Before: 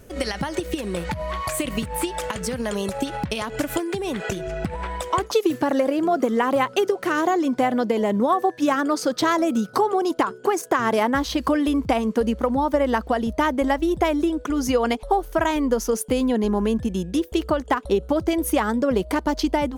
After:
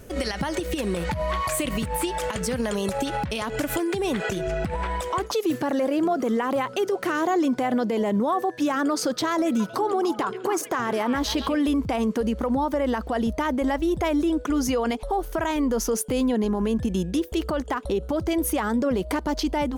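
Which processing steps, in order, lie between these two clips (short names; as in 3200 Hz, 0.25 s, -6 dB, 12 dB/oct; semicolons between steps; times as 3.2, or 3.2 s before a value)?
limiter -19 dBFS, peak gain reduction 10.5 dB; 9.32–11.59 delay with a stepping band-pass 0.138 s, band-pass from 2800 Hz, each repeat -1.4 oct, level -6.5 dB; gain +2.5 dB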